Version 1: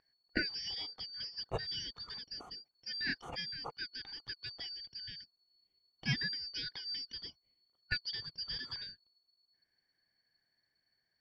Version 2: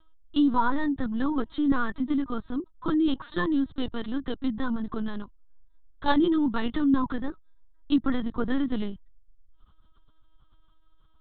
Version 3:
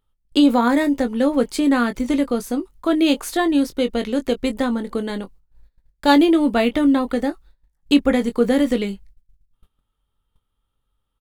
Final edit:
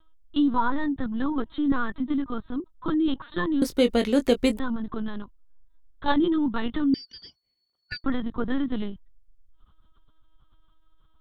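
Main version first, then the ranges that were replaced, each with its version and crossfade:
2
0:03.62–0:04.59: punch in from 3
0:06.94–0:08.04: punch in from 1

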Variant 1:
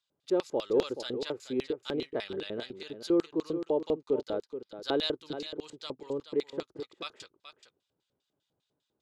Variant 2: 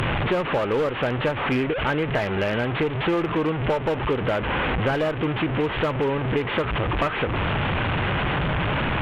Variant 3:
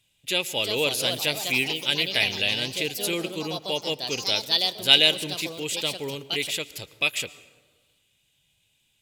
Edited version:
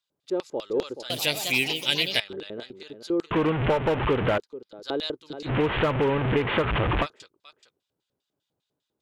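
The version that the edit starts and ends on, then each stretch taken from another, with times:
1
0:01.10–0:02.20: punch in from 3
0:03.31–0:04.38: punch in from 2
0:05.47–0:07.04: punch in from 2, crossfade 0.06 s

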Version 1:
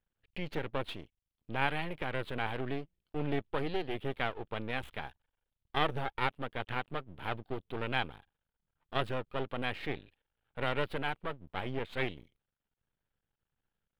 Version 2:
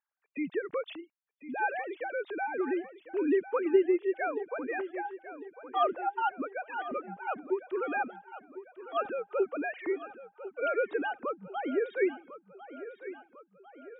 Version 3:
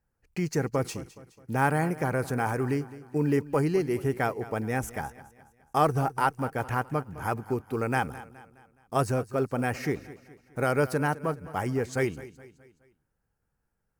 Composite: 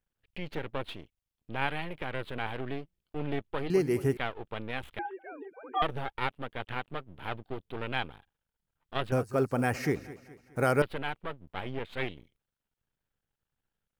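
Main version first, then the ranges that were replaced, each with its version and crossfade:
1
0:03.70–0:04.17: punch in from 3
0:04.99–0:05.82: punch in from 2
0:09.12–0:10.82: punch in from 3

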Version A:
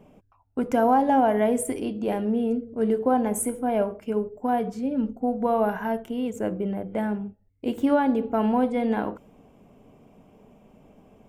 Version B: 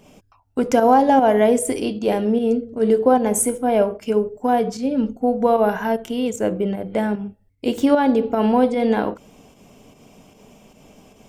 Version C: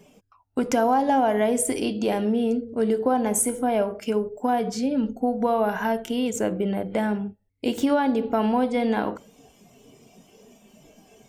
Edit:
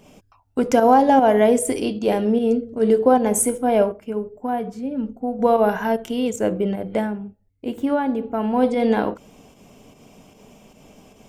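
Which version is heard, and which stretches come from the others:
B
0:03.92–0:05.39: punch in from A
0:07.04–0:08.59: punch in from A, crossfade 0.16 s
not used: C

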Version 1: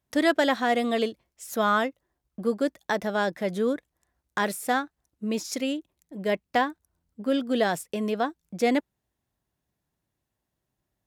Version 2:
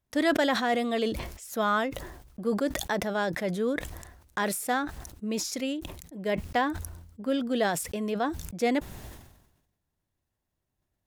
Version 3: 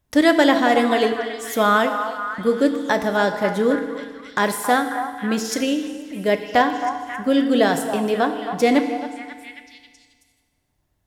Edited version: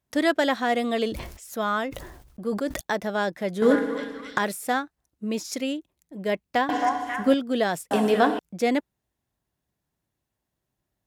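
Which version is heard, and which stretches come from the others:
1
0:01.06–0:02.81: punch in from 2
0:03.62–0:04.38: punch in from 3
0:06.69–0:07.34: punch in from 3
0:07.91–0:08.39: punch in from 3

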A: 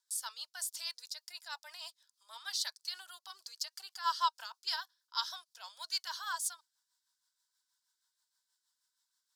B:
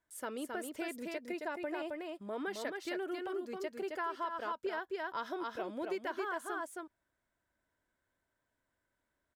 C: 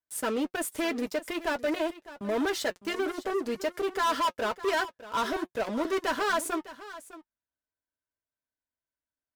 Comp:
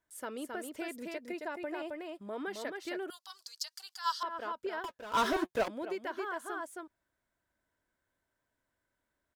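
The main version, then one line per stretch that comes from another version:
B
0:03.10–0:04.23: punch in from A
0:04.84–0:05.68: punch in from C

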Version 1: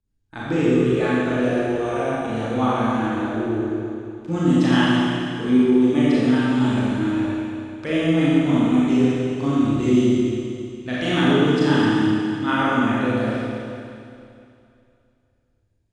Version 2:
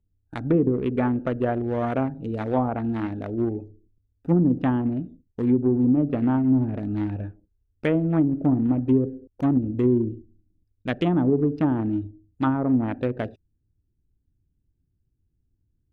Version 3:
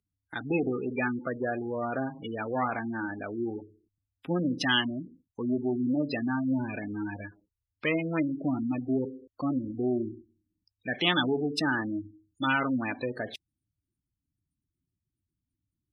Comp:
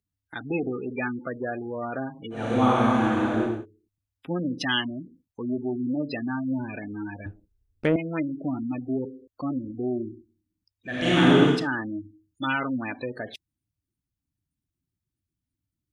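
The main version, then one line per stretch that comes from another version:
3
0:02.42–0:03.54: punch in from 1, crossfade 0.24 s
0:07.26–0:07.96: punch in from 2
0:10.95–0:11.56: punch in from 1, crossfade 0.24 s

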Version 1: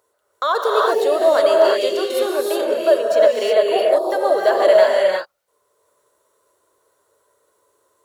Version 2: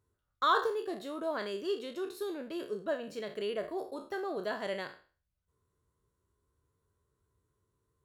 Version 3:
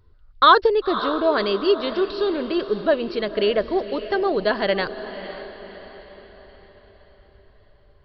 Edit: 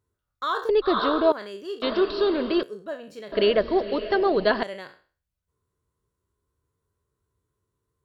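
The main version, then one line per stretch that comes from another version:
2
0:00.69–0:01.32: punch in from 3
0:01.82–0:02.63: punch in from 3
0:03.32–0:04.63: punch in from 3
not used: 1

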